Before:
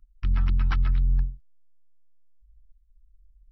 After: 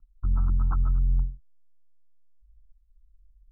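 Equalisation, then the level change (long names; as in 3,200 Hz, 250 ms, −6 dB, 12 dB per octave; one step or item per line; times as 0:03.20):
Butterworth low-pass 1,400 Hz 96 dB per octave
parametric band 420 Hz −2.5 dB
−1.0 dB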